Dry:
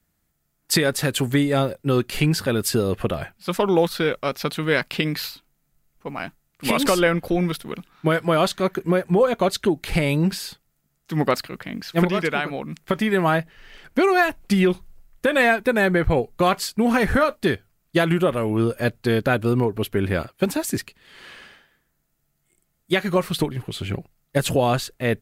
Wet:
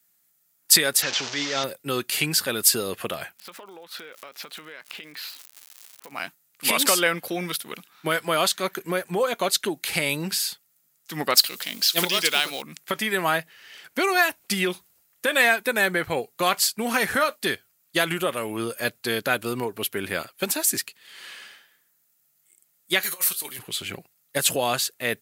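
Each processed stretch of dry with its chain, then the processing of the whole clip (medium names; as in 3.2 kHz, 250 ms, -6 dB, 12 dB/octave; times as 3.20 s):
1.02–1.64 s: one-bit delta coder 32 kbps, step -22.5 dBFS + bass shelf 300 Hz -7.5 dB + transient shaper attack -7 dB, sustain +1 dB
3.37–6.11 s: tone controls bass -9 dB, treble -14 dB + crackle 220 per s -36 dBFS + compression 16:1, threshold -34 dBFS
11.37–12.62 s: companding laws mixed up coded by mu + high-pass 180 Hz 6 dB/octave + resonant high shelf 2.6 kHz +8 dB, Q 1.5
23.03–23.59 s: RIAA curve recording + compressor with a negative ratio -27 dBFS, ratio -0.5 + feedback comb 130 Hz, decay 0.22 s
whole clip: high-pass 100 Hz; tilt EQ +3.5 dB/octave; trim -2.5 dB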